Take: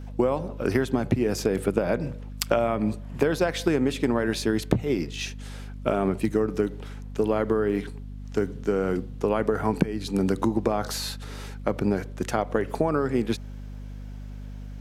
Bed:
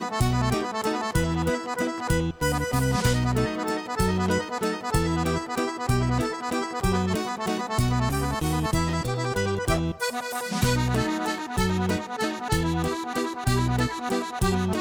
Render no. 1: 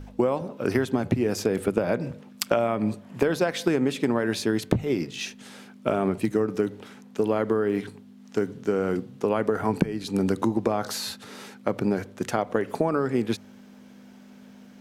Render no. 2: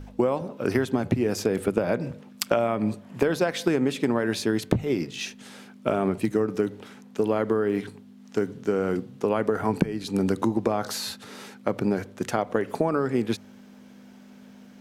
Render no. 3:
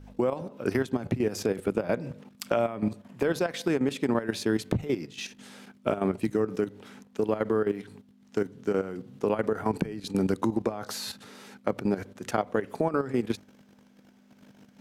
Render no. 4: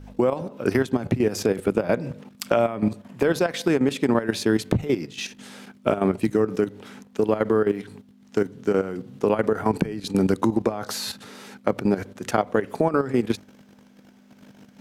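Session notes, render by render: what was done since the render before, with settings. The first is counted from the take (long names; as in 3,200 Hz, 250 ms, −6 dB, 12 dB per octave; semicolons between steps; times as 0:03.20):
hum removal 50 Hz, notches 3
no processing that can be heard
output level in coarse steps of 12 dB
level +5.5 dB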